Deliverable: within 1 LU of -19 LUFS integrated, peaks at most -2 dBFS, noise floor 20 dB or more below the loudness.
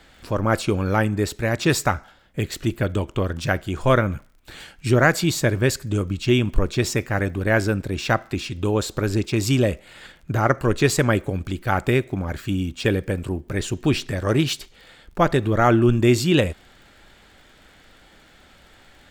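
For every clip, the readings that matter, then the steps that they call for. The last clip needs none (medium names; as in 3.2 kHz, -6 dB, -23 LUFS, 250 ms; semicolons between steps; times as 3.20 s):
tick rate 38 per s; loudness -22.0 LUFS; peak level -2.5 dBFS; loudness target -19.0 LUFS
-> de-click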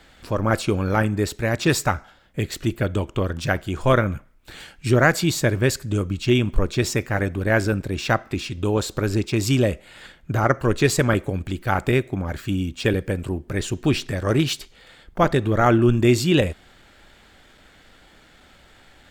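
tick rate 1.7 per s; loudness -22.0 LUFS; peak level -2.5 dBFS; loudness target -19.0 LUFS
-> trim +3 dB; peak limiter -2 dBFS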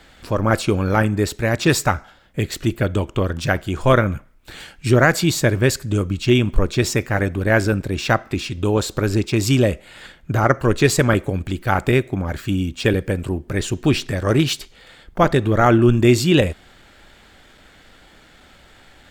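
loudness -19.0 LUFS; peak level -2.0 dBFS; noise floor -50 dBFS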